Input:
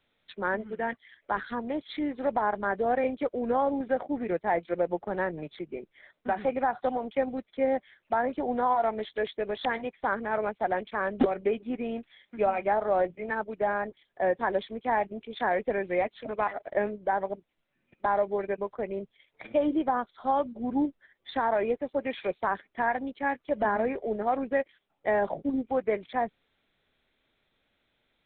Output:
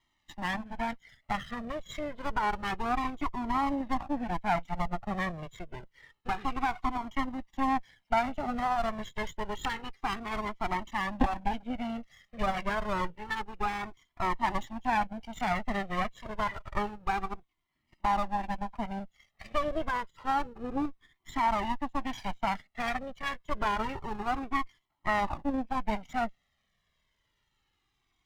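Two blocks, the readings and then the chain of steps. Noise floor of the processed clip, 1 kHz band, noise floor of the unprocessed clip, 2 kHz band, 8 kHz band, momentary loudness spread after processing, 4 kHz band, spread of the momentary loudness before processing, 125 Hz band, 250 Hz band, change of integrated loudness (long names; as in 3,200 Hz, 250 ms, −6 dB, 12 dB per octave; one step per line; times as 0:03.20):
−78 dBFS, −1.0 dB, −76 dBFS, −1.5 dB, can't be measured, 8 LU, +4.5 dB, 7 LU, +4.5 dB, −2.5 dB, −3.5 dB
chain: lower of the sound and its delayed copy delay 1 ms
flanger whose copies keep moving one way falling 0.28 Hz
level +3.5 dB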